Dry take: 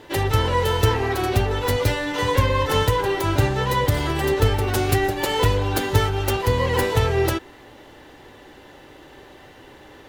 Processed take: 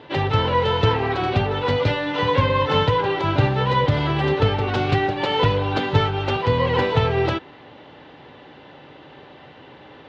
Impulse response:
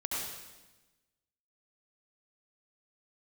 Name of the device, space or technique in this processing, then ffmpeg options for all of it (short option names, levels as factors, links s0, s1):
guitar cabinet: -af "highpass=110,equalizer=f=150:t=q:w=4:g=6,equalizer=f=360:t=q:w=4:g=-5,equalizer=f=1800:t=q:w=4:g=-4,lowpass=f=3900:w=0.5412,lowpass=f=3900:w=1.3066,volume=1.33"